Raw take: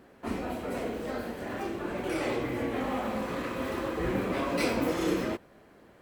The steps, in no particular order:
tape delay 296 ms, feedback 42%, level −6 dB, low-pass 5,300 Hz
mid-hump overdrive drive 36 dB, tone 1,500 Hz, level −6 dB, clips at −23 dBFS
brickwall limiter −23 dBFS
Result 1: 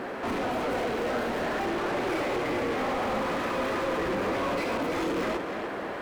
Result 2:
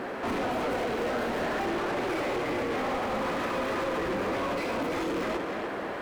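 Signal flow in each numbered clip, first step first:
mid-hump overdrive, then brickwall limiter, then tape delay
mid-hump overdrive, then tape delay, then brickwall limiter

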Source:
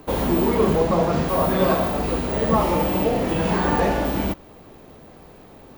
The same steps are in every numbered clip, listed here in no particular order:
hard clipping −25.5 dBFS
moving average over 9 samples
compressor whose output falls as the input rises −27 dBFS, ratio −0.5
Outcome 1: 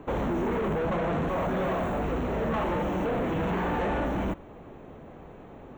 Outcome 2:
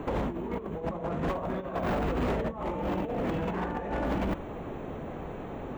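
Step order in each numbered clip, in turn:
hard clipping, then moving average, then compressor whose output falls as the input rises
moving average, then compressor whose output falls as the input rises, then hard clipping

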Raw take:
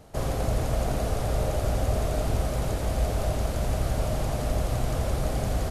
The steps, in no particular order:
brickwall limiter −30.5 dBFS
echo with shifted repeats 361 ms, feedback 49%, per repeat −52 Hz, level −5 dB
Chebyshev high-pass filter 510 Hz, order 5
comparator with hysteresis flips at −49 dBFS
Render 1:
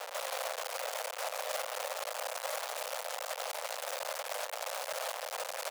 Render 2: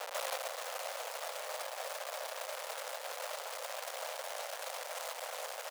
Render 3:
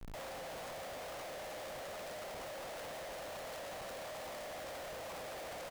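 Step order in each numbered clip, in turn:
echo with shifted repeats, then comparator with hysteresis, then brickwall limiter, then Chebyshev high-pass filter
comparator with hysteresis, then echo with shifted repeats, then brickwall limiter, then Chebyshev high-pass filter
brickwall limiter, then echo with shifted repeats, then Chebyshev high-pass filter, then comparator with hysteresis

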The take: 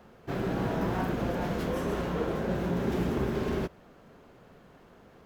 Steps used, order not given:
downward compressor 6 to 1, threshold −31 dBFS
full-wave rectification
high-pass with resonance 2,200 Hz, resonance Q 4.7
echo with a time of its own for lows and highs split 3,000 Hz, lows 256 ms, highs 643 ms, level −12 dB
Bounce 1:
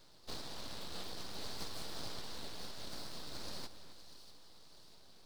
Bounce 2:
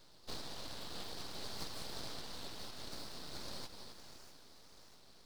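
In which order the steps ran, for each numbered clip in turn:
downward compressor, then high-pass with resonance, then full-wave rectification, then echo with a time of its own for lows and highs
echo with a time of its own for lows and highs, then downward compressor, then high-pass with resonance, then full-wave rectification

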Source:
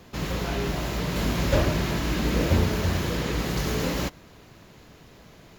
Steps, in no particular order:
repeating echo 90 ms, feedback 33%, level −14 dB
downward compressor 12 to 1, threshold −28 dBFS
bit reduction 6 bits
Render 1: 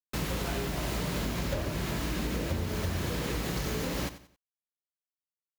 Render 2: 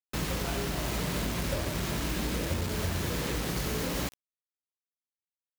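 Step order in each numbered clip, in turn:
bit reduction, then downward compressor, then repeating echo
downward compressor, then repeating echo, then bit reduction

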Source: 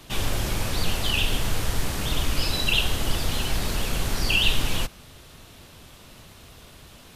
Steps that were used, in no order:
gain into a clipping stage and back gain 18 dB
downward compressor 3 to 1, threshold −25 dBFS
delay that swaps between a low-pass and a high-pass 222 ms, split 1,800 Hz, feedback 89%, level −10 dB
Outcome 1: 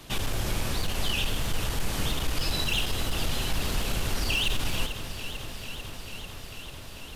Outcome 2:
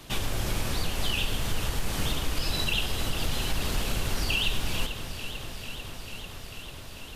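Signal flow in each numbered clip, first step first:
gain into a clipping stage and back, then downward compressor, then delay that swaps between a low-pass and a high-pass
downward compressor, then delay that swaps between a low-pass and a high-pass, then gain into a clipping stage and back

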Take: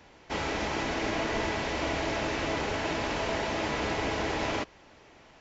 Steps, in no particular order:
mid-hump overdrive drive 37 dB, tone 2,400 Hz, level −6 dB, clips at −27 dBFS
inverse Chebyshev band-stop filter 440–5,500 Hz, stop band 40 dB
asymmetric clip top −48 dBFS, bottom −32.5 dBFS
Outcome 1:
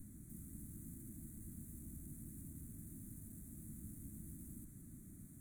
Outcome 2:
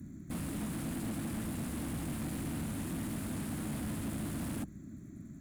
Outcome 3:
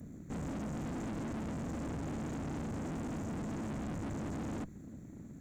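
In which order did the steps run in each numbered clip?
mid-hump overdrive, then asymmetric clip, then inverse Chebyshev band-stop filter
asymmetric clip, then inverse Chebyshev band-stop filter, then mid-hump overdrive
inverse Chebyshev band-stop filter, then mid-hump overdrive, then asymmetric clip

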